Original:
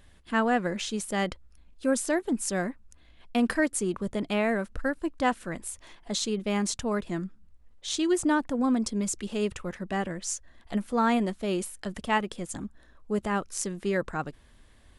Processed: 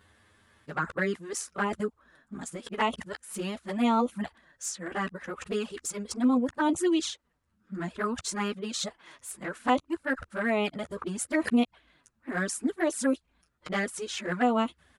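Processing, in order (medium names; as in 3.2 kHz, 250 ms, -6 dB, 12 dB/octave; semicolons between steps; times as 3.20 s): reverse the whole clip; high-pass 88 Hz 12 dB/octave; peaking EQ 1.4 kHz +7 dB 1.1 oct; doubling 12 ms -10.5 dB; touch-sensitive flanger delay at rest 10.2 ms, full sweep at -20 dBFS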